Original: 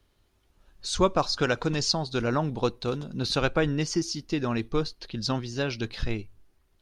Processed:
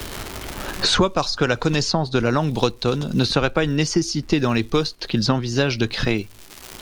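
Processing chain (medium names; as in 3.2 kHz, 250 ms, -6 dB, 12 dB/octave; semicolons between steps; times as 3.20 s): crackle 260 per s -51 dBFS; three bands compressed up and down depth 100%; trim +6.5 dB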